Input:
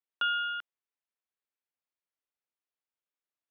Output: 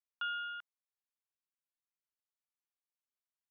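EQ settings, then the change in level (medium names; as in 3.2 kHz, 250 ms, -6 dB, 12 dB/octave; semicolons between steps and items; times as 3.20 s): ladder high-pass 720 Hz, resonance 30%; -3.5 dB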